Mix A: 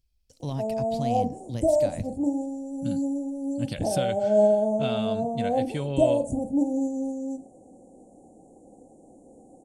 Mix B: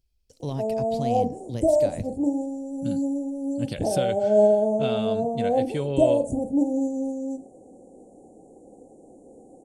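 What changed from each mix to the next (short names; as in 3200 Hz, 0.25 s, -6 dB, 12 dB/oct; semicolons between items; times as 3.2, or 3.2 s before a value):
master: add bell 420 Hz +6.5 dB 0.64 oct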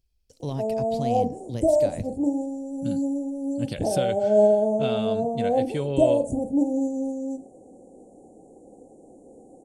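none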